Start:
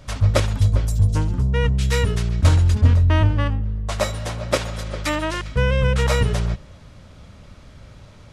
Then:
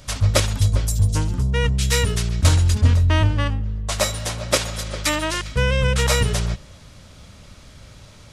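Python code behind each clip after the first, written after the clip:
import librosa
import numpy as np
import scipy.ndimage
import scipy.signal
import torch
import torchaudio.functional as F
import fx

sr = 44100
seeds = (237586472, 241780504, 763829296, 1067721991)

y = fx.high_shelf(x, sr, hz=3200.0, db=11.5)
y = F.gain(torch.from_numpy(y), -1.0).numpy()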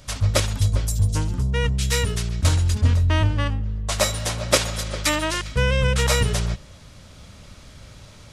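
y = fx.rider(x, sr, range_db=10, speed_s=2.0)
y = F.gain(torch.from_numpy(y), -2.0).numpy()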